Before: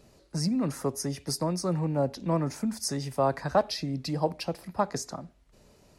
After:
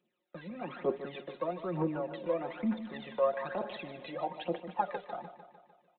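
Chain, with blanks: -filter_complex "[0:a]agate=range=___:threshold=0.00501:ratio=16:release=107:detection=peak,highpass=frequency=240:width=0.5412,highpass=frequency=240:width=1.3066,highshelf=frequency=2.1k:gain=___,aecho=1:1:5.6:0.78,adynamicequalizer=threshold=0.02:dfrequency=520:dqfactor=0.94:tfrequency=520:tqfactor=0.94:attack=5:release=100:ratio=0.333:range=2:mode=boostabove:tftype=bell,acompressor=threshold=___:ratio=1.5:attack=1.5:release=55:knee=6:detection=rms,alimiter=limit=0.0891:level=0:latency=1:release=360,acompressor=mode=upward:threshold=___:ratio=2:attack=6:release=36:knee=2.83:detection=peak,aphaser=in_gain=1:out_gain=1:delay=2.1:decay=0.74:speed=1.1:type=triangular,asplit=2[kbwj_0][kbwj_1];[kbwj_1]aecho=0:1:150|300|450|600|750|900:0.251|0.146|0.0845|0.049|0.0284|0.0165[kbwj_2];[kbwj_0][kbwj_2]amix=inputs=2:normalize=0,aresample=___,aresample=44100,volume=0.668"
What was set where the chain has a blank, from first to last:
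0.00178, 4.5, 0.0112, 0.00891, 8000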